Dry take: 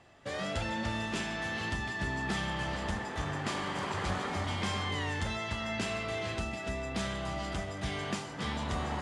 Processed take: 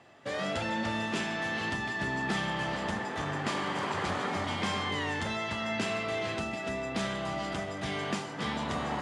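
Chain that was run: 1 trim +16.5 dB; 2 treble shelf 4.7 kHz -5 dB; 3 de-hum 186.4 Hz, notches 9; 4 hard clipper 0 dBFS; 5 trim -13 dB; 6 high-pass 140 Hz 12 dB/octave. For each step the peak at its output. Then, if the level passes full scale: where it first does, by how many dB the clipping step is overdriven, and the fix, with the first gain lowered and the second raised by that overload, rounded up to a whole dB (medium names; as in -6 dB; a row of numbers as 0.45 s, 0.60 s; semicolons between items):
-2.5 dBFS, -3.0 dBFS, -4.0 dBFS, -4.0 dBFS, -17.0 dBFS, -18.0 dBFS; nothing clips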